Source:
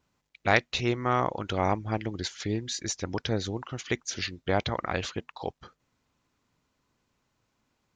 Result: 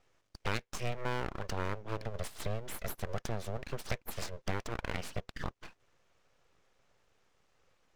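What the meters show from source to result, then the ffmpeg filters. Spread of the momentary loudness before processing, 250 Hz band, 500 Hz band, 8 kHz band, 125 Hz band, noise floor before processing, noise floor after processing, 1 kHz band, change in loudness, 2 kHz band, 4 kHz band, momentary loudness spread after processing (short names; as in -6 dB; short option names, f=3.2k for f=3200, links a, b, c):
11 LU, -11.5 dB, -9.5 dB, -10.0 dB, -6.5 dB, -78 dBFS, -76 dBFS, -11.0 dB, -9.5 dB, -10.0 dB, -11.0 dB, 6 LU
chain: -af "acompressor=threshold=-40dB:ratio=3,highpass=f=120:w=0.5412,highpass=f=120:w=1.3066,equalizer=f=270:t=q:w=4:g=7,equalizer=f=560:t=q:w=4:g=-4,equalizer=f=4.2k:t=q:w=4:g=-9,lowpass=f=6.6k:w=0.5412,lowpass=f=6.6k:w=1.3066,aeval=exprs='abs(val(0))':c=same,volume=5.5dB"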